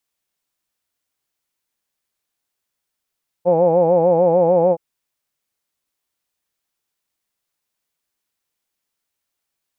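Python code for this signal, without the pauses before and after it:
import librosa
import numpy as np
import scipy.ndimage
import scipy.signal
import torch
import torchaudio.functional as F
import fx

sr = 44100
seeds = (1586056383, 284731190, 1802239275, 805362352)

y = fx.formant_vowel(sr, seeds[0], length_s=1.32, hz=170.0, glide_st=0.5, vibrato_hz=6.7, vibrato_st=1.05, f1_hz=530.0, f2_hz=830.0, f3_hz=2400.0)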